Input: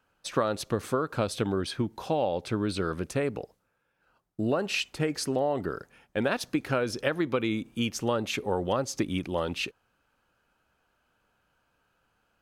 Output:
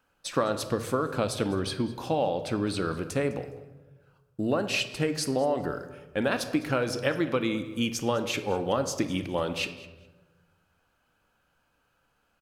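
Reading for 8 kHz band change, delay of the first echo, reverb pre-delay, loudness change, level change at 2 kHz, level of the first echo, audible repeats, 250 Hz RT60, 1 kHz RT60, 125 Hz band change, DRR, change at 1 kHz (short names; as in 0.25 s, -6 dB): +2.0 dB, 0.206 s, 4 ms, +1.0 dB, +1.0 dB, -20.0 dB, 2, 1.6 s, 1.0 s, +0.5 dB, 8.5 dB, +1.0 dB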